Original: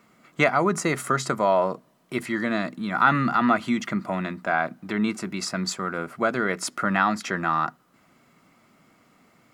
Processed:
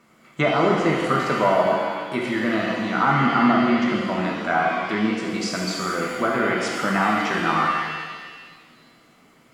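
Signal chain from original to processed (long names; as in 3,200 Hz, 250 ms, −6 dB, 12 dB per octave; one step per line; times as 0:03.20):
treble cut that deepens with the level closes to 1,100 Hz, closed at −16.5 dBFS
reverb with rising layers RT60 1.6 s, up +7 semitones, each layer −8 dB, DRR −2 dB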